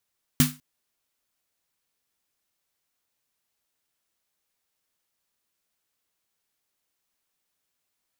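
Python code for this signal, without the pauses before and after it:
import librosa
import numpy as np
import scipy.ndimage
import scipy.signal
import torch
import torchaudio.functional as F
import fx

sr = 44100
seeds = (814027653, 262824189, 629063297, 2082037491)

y = fx.drum_snare(sr, seeds[0], length_s=0.2, hz=150.0, second_hz=250.0, noise_db=-3.0, noise_from_hz=1000.0, decay_s=0.26, noise_decay_s=0.27)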